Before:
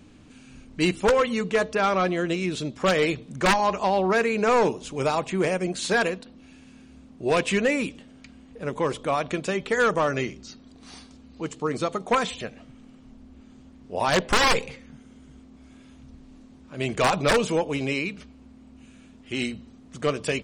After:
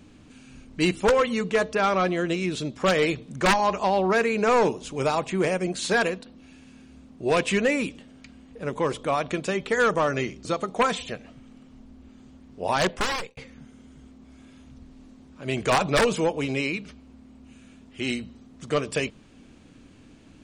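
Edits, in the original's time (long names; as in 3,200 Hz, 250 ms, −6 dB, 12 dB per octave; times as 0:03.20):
0:10.45–0:11.77: remove
0:14.05–0:14.69: fade out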